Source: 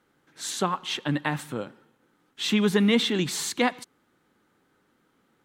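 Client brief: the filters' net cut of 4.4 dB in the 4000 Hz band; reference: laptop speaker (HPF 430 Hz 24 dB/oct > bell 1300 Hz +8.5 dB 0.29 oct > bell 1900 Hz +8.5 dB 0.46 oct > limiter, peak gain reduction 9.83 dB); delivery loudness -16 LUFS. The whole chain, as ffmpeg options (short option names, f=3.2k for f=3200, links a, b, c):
-af "highpass=f=430:w=0.5412,highpass=f=430:w=1.3066,equalizer=f=1.3k:t=o:w=0.29:g=8.5,equalizer=f=1.9k:t=o:w=0.46:g=8.5,equalizer=f=4k:t=o:g=-6.5,volume=14.5dB,alimiter=limit=-3dB:level=0:latency=1"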